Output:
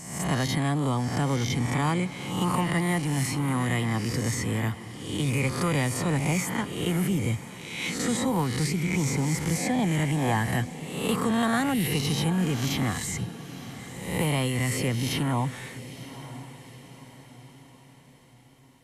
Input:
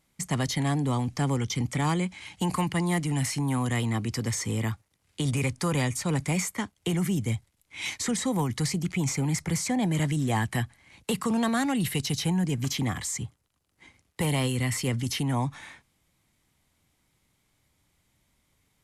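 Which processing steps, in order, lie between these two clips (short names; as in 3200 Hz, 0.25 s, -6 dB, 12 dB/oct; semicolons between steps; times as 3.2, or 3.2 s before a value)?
spectral swells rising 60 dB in 0.76 s; dynamic EQ 6100 Hz, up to -6 dB, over -45 dBFS, Q 1; diffused feedback echo 0.935 s, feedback 47%, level -14 dB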